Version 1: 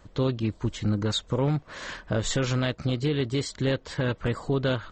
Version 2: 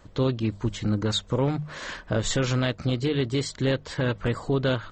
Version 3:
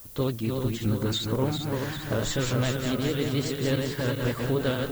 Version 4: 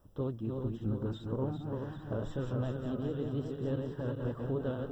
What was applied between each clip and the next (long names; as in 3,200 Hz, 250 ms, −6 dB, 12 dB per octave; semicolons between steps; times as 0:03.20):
mains-hum notches 50/100/150/200 Hz; level +1.5 dB
feedback delay that plays each chunk backwards 198 ms, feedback 72%, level −4 dB; pitch vibrato 11 Hz 52 cents; background noise violet −43 dBFS; level −3.5 dB
moving average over 20 samples; level −7.5 dB